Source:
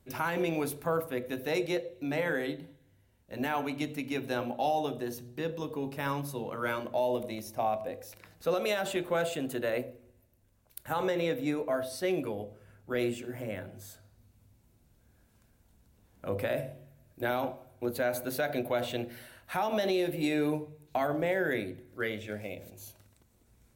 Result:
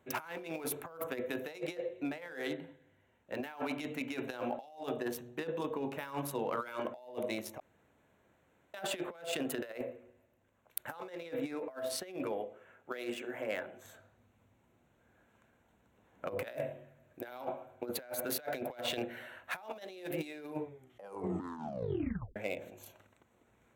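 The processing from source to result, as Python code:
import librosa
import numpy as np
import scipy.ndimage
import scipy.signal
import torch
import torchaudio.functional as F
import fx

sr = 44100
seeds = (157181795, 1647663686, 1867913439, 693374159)

y = fx.peak_eq(x, sr, hz=92.0, db=-11.5, octaves=2.5, at=(12.32, 13.85))
y = fx.edit(y, sr, fx.room_tone_fill(start_s=7.6, length_s=1.14),
    fx.tape_stop(start_s=20.61, length_s=1.75), tone=tone)
y = fx.wiener(y, sr, points=9)
y = fx.highpass(y, sr, hz=580.0, slope=6)
y = fx.over_compress(y, sr, threshold_db=-40.0, ratio=-0.5)
y = F.gain(torch.from_numpy(y), 2.0).numpy()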